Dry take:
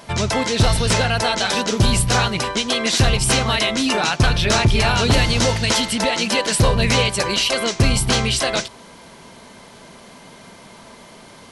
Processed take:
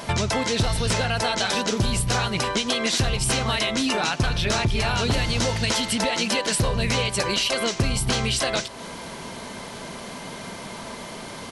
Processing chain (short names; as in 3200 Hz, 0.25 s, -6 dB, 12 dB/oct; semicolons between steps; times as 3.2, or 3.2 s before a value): compressor 4:1, threshold -29 dBFS, peak gain reduction 15 dB; on a send: echo 0.269 s -24 dB; on the sum: gain +6.5 dB